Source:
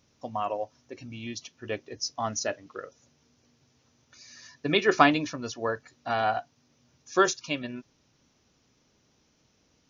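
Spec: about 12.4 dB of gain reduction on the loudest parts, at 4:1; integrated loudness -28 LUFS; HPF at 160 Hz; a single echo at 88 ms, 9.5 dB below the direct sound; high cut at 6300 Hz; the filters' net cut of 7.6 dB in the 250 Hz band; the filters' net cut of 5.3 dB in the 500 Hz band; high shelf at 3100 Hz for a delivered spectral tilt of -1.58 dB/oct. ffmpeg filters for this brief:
-af "highpass=160,lowpass=6.3k,equalizer=f=250:t=o:g=-7.5,equalizer=f=500:t=o:g=-5,highshelf=f=3.1k:g=8,acompressor=threshold=-30dB:ratio=4,aecho=1:1:88:0.335,volume=7.5dB"

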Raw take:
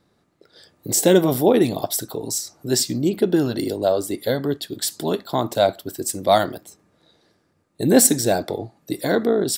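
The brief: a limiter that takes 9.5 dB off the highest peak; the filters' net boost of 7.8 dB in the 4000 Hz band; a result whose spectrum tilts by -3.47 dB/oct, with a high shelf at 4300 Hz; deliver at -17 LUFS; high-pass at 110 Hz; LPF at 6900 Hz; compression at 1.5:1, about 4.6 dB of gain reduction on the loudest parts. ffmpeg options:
-af "highpass=110,lowpass=6.9k,equalizer=f=4k:t=o:g=5.5,highshelf=f=4.3k:g=8,acompressor=threshold=-21dB:ratio=1.5,volume=8.5dB,alimiter=limit=-5.5dB:level=0:latency=1"

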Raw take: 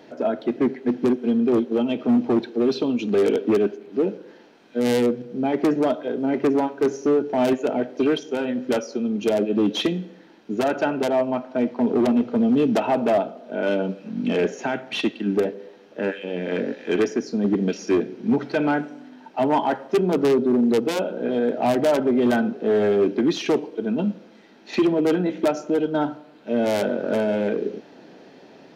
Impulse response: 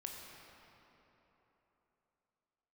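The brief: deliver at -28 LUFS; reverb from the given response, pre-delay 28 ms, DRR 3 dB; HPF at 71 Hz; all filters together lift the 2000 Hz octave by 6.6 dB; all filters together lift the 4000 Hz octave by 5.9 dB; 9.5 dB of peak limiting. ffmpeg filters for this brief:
-filter_complex "[0:a]highpass=71,equalizer=f=2k:t=o:g=8,equalizer=f=4k:t=o:g=4.5,alimiter=limit=-17dB:level=0:latency=1,asplit=2[a][b];[1:a]atrim=start_sample=2205,adelay=28[c];[b][c]afir=irnorm=-1:irlink=0,volume=-1dB[d];[a][d]amix=inputs=2:normalize=0,volume=-3dB"

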